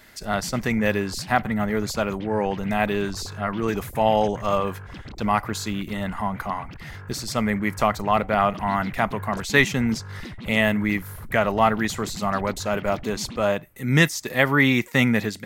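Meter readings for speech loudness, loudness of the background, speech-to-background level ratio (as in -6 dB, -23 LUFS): -23.5 LUFS, -39.5 LUFS, 16.0 dB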